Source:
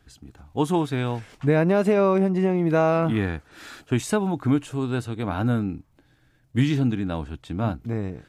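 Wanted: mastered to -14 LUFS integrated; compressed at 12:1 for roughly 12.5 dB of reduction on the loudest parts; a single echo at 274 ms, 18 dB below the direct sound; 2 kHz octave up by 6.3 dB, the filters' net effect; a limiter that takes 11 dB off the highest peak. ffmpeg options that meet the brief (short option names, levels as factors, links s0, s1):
-af "equalizer=f=2000:t=o:g=8.5,acompressor=threshold=0.0447:ratio=12,alimiter=level_in=1.58:limit=0.0631:level=0:latency=1,volume=0.631,aecho=1:1:274:0.126,volume=15"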